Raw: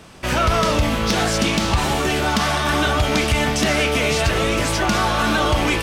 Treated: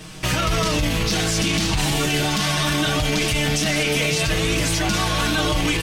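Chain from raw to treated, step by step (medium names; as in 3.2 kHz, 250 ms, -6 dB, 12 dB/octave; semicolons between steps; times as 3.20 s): peaking EQ 730 Hz -9 dB 3 oct; comb 6.4 ms, depth 96%; peak limiter -18.5 dBFS, peak gain reduction 10.5 dB; trim +6.5 dB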